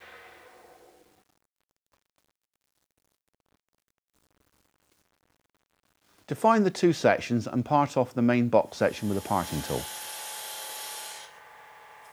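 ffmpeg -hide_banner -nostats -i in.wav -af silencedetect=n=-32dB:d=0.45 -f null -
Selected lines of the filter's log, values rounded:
silence_start: 0.00
silence_end: 6.31 | silence_duration: 6.31
silence_start: 11.16
silence_end: 12.13 | silence_duration: 0.97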